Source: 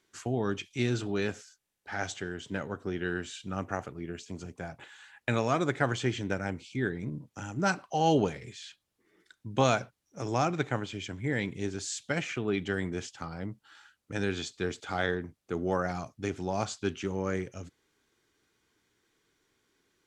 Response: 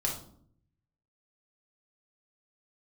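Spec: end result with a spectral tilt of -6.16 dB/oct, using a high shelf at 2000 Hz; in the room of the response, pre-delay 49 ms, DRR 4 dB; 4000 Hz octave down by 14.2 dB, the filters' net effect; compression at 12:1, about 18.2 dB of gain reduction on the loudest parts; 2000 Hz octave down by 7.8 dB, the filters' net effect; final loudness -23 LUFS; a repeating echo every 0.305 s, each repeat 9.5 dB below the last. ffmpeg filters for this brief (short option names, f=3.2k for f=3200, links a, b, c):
-filter_complex "[0:a]highshelf=f=2k:g=-9,equalizer=f=2k:t=o:g=-4,equalizer=f=4k:t=o:g=-8.5,acompressor=threshold=-39dB:ratio=12,aecho=1:1:305|610|915|1220:0.335|0.111|0.0365|0.012,asplit=2[a][b];[1:a]atrim=start_sample=2205,adelay=49[c];[b][c]afir=irnorm=-1:irlink=0,volume=-9dB[d];[a][d]amix=inputs=2:normalize=0,volume=20dB"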